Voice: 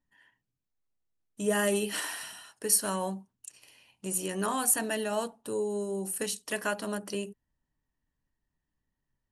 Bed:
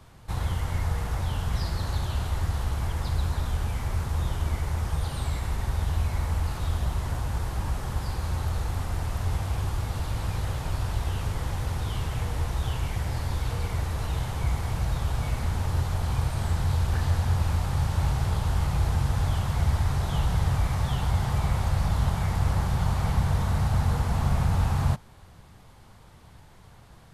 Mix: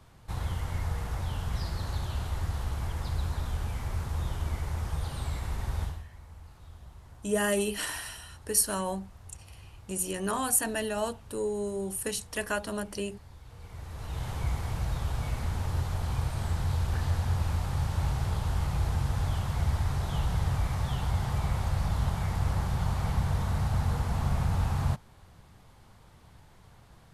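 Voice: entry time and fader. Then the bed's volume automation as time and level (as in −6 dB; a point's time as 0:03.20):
5.85 s, 0.0 dB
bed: 0:05.84 −4.5 dB
0:06.07 −21.5 dB
0:13.44 −21.5 dB
0:14.29 −4 dB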